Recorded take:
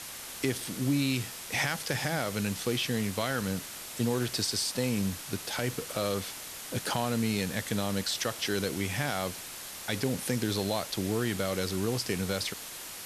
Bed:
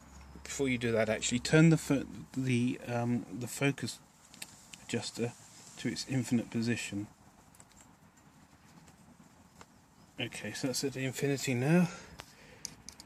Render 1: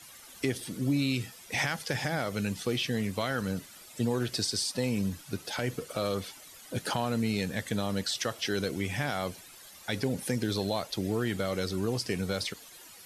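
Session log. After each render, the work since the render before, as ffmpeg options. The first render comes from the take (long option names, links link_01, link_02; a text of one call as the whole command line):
ffmpeg -i in.wav -af "afftdn=noise_reduction=13:noise_floor=-42" out.wav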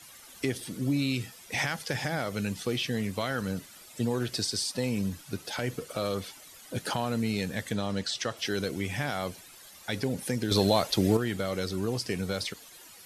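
ffmpeg -i in.wav -filter_complex "[0:a]asettb=1/sr,asplit=3[link_01][link_02][link_03];[link_01]atrim=end=7.734[link_04];[link_02]atrim=start=7.73:end=8.37,asetpts=PTS-STARTPTS,afade=type=in:duration=0.004:curve=qsin,afade=type=out:start_time=0.636:duration=0.004:curve=qsin,lowpass=7600[link_05];[link_03]atrim=start=8.366[link_06];[link_04][link_05]acrossfade=duration=0.004:curve1=hsin:curve2=qsin[link_07];[link_07][link_06]acrossfade=duration=0.004:curve1=qsin:curve2=hsin,asettb=1/sr,asplit=3[link_08][link_09][link_10];[link_08]atrim=end=10.514[link_11];[link_09]atrim=start=10.51:end=11.17,asetpts=PTS-STARTPTS,afade=type=in:duration=0.004:curve=qsin,afade=type=out:start_time=0.656:duration=0.004:curve=qsin,acontrast=90[link_12];[link_10]atrim=start=11.166[link_13];[link_11][link_12]acrossfade=duration=0.004:curve1=hsin:curve2=qsin[link_14];[link_14][link_13]acrossfade=duration=0.004:curve1=qsin:curve2=hsin" out.wav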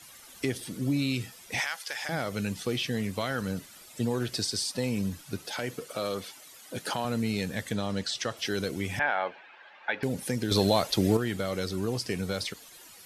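ffmpeg -i in.wav -filter_complex "[0:a]asettb=1/sr,asplit=3[link_01][link_02][link_03];[link_01]atrim=end=1.604[link_04];[link_02]atrim=start=1.6:end=2.09,asetpts=PTS-STARTPTS,afade=type=in:duration=0.004:curve=qsin,afade=type=out:start_time=0.486:duration=0.004:curve=qsin,highpass=920[link_05];[link_03]atrim=start=2.086[link_06];[link_04][link_05]acrossfade=duration=0.004:curve1=hsin:curve2=qsin[link_07];[link_07][link_06]acrossfade=duration=0.004:curve1=qsin:curve2=hsin,asettb=1/sr,asplit=3[link_08][link_09][link_10];[link_08]atrim=end=5.474[link_11];[link_09]atrim=start=5.47:end=7.05,asetpts=PTS-STARTPTS,afade=type=in:duration=0.004:curve=qsin,afade=type=out:start_time=1.576:duration=0.004:curve=qsin,highpass=frequency=220:poles=1[link_12];[link_10]atrim=start=7.046[link_13];[link_11][link_12]acrossfade=duration=0.004:curve1=hsin:curve2=qsin[link_14];[link_14][link_13]acrossfade=duration=0.004:curve1=qsin:curve2=hsin,asettb=1/sr,asplit=3[link_15][link_16][link_17];[link_15]atrim=end=8.994[link_18];[link_16]atrim=start=8.99:end=10.03,asetpts=PTS-STARTPTS,afade=type=in:duration=0.004:curve=qsin,afade=type=out:start_time=1.036:duration=0.004:curve=qsin,highpass=420,equalizer=frequency=580:width_type=q:width=4:gain=3,equalizer=frequency=860:width_type=q:width=4:gain=10,equalizer=frequency=1600:width_type=q:width=4:gain=10,equalizer=frequency=2500:width_type=q:width=4:gain=5,lowpass=frequency=3000:width=0.5412,lowpass=frequency=3000:width=1.3066[link_19];[link_17]atrim=start=10.026[link_20];[link_18][link_19]acrossfade=duration=0.004:curve1=hsin:curve2=qsin[link_21];[link_21][link_20]acrossfade=duration=0.004:curve1=qsin:curve2=hsin" out.wav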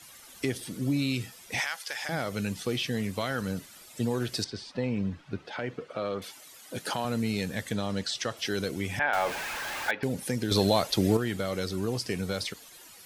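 ffmpeg -i in.wav -filter_complex "[0:a]asettb=1/sr,asplit=3[link_01][link_02][link_03];[link_01]atrim=end=4.444[link_04];[link_02]atrim=start=4.44:end=6.22,asetpts=PTS-STARTPTS,afade=type=in:duration=0.004:curve=qsin,afade=type=out:start_time=1.776:duration=0.004:curve=qsin,lowpass=2500[link_05];[link_03]atrim=start=6.216[link_06];[link_04][link_05]acrossfade=duration=0.004:curve1=hsin:curve2=qsin[link_07];[link_07][link_06]acrossfade=duration=0.004:curve1=qsin:curve2=hsin,asettb=1/sr,asplit=3[link_08][link_09][link_10];[link_08]atrim=end=9.134[link_11];[link_09]atrim=start=9.13:end=9.91,asetpts=PTS-STARTPTS,afade=type=in:duration=0.004:curve=qsin,afade=type=out:start_time=0.776:duration=0.004:curve=qsin,aeval=exprs='val(0)+0.5*0.0316*sgn(val(0))':channel_layout=same[link_12];[link_10]atrim=start=9.906[link_13];[link_11][link_12]acrossfade=duration=0.004:curve1=hsin:curve2=qsin[link_14];[link_14][link_13]acrossfade=duration=0.004:curve1=qsin:curve2=hsin" out.wav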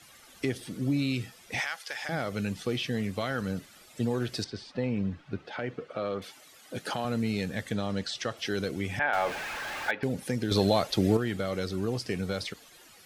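ffmpeg -i in.wav -af "highshelf=frequency=5700:gain=-8.5,bandreject=frequency=970:width=14" out.wav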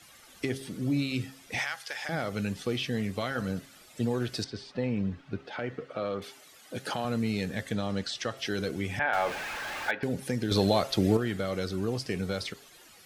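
ffmpeg -i in.wav -af "bandreject=frequency=134.5:width_type=h:width=4,bandreject=frequency=269:width_type=h:width=4,bandreject=frequency=403.5:width_type=h:width=4,bandreject=frequency=538:width_type=h:width=4,bandreject=frequency=672.5:width_type=h:width=4,bandreject=frequency=807:width_type=h:width=4,bandreject=frequency=941.5:width_type=h:width=4,bandreject=frequency=1076:width_type=h:width=4,bandreject=frequency=1210.5:width_type=h:width=4,bandreject=frequency=1345:width_type=h:width=4,bandreject=frequency=1479.5:width_type=h:width=4,bandreject=frequency=1614:width_type=h:width=4,bandreject=frequency=1748.5:width_type=h:width=4,bandreject=frequency=1883:width_type=h:width=4,bandreject=frequency=2017.5:width_type=h:width=4" out.wav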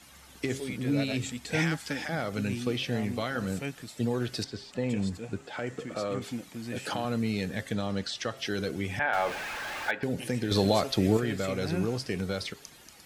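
ffmpeg -i in.wav -i bed.wav -filter_complex "[1:a]volume=-6dB[link_01];[0:a][link_01]amix=inputs=2:normalize=0" out.wav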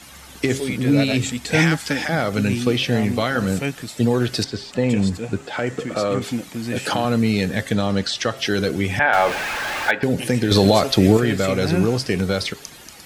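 ffmpeg -i in.wav -af "volume=11dB,alimiter=limit=-3dB:level=0:latency=1" out.wav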